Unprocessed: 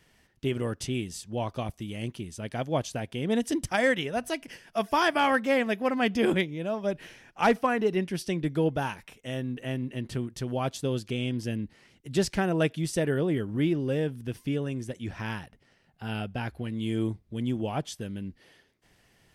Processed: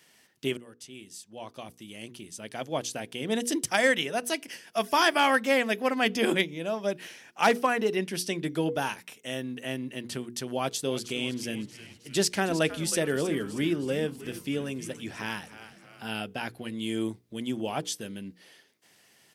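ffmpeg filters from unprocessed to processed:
-filter_complex "[0:a]asplit=3[a][b][c];[a]afade=t=out:st=10.82:d=0.02[d];[b]asplit=7[e][f][g][h][i][j][k];[f]adelay=315,afreqshift=-120,volume=-13dB[l];[g]adelay=630,afreqshift=-240,volume=-18.4dB[m];[h]adelay=945,afreqshift=-360,volume=-23.7dB[n];[i]adelay=1260,afreqshift=-480,volume=-29.1dB[o];[j]adelay=1575,afreqshift=-600,volume=-34.4dB[p];[k]adelay=1890,afreqshift=-720,volume=-39.8dB[q];[e][l][m][n][o][p][q]amix=inputs=7:normalize=0,afade=t=in:st=10.82:d=0.02,afade=t=out:st=16.07:d=0.02[r];[c]afade=t=in:st=16.07:d=0.02[s];[d][r][s]amix=inputs=3:normalize=0,asplit=2[t][u];[t]atrim=end=0.57,asetpts=PTS-STARTPTS,afade=t=out:st=0.566:d=0.004:c=hsin:silence=0.0891251[v];[u]atrim=start=0.57,asetpts=PTS-STARTPTS,afade=t=in:d=3.08:silence=0.0891251[w];[v][w]concat=n=2:v=0:a=1,highpass=190,highshelf=f=3k:g=9,bandreject=f=60:t=h:w=6,bandreject=f=120:t=h:w=6,bandreject=f=180:t=h:w=6,bandreject=f=240:t=h:w=6,bandreject=f=300:t=h:w=6,bandreject=f=360:t=h:w=6,bandreject=f=420:t=h:w=6,bandreject=f=480:t=h:w=6"

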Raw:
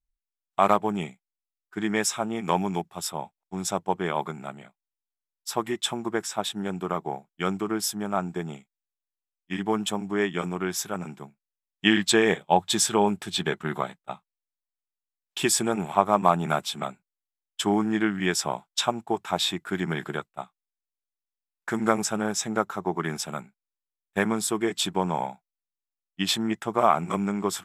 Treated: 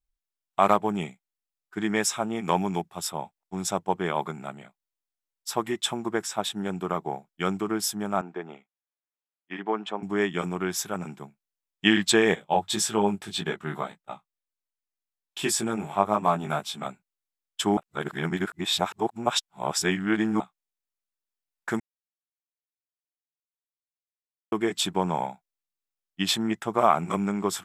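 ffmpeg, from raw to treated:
-filter_complex "[0:a]asettb=1/sr,asplit=3[a][b][c];[a]atrim=end=8.214[d];[b]atrim=start=8.21:end=10.03,asetpts=PTS-STARTPTS,afade=t=in:d=0.004:c=qsin,afade=t=out:st=1.816:d=0.004:c=qsin,highpass=350,lowpass=2.4k[e];[c]atrim=start=10.026[f];[d][e]acrossfade=d=0.004:c1=hsin:c2=qsin[g];[g][f]acrossfade=d=0.004:c1=qsin:c2=hsin,asettb=1/sr,asplit=3[h][i][j];[h]atrim=end=12.354[k];[i]atrim=start=12.35:end=16.86,asetpts=PTS-STARTPTS,afade=t=in:d=0.004:c=qsin,afade=t=out:st=4.506:d=0.004:c=qsin,flanger=delay=18:depth=2.6:speed=1.8[l];[j]atrim=start=16.856[m];[k][l]acrossfade=d=0.004:c1=hsin:c2=qsin[n];[n][m]acrossfade=d=0.004:c1=qsin:c2=hsin,asplit=5[o][p][q][r][s];[o]atrim=end=17.772[t];[p]atrim=start=17.768:end=20.402,asetpts=PTS-STARTPTS,areverse[u];[q]atrim=start=20.398:end=21.8,asetpts=PTS-STARTPTS,afade=t=out:st=1.398:d=0.004:c=hsin[v];[r]atrim=start=21.8:end=24.52,asetpts=PTS-STARTPTS,volume=0[w];[s]atrim=start=24.52,asetpts=PTS-STARTPTS,afade=t=in:d=0.004:c=hsin[x];[t][u]acrossfade=d=0.004:c1=hsin:c2=hsin[y];[v][w][x]concat=n=3:v=0:a=1[z];[y][z]acrossfade=d=0.004:c1=hsin:c2=hsin"

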